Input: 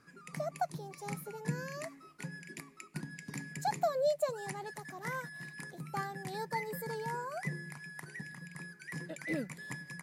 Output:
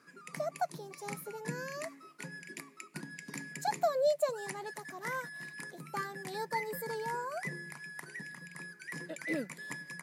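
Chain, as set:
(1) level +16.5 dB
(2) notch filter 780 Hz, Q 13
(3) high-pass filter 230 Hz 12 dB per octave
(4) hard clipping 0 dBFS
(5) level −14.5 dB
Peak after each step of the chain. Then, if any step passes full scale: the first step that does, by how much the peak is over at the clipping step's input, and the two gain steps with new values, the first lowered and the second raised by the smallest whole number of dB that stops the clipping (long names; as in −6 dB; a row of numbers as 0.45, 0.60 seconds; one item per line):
−4.5, −5.0, −4.5, −4.5, −19.0 dBFS
no step passes full scale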